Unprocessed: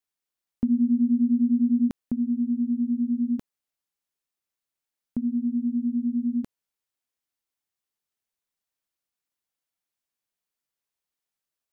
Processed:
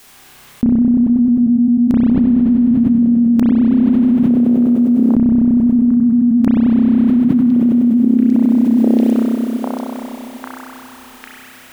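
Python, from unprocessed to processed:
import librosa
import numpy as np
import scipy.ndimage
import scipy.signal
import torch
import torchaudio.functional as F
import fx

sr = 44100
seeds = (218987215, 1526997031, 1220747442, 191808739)

y = fx.low_shelf(x, sr, hz=310.0, db=7.5, at=(0.77, 2.01), fade=0.02)
y = fx.highpass(y, sr, hz=62.0, slope=24, at=(5.74, 6.3), fade=0.02)
y = fx.echo_stepped(y, sr, ms=799, hz=180.0, octaves=0.7, feedback_pct=70, wet_db=-5.0)
y = fx.rev_spring(y, sr, rt60_s=3.0, pass_ms=(31,), chirp_ms=65, drr_db=-6.5)
y = fx.env_flatten(y, sr, amount_pct=100)
y = y * 10.0 ** (3.5 / 20.0)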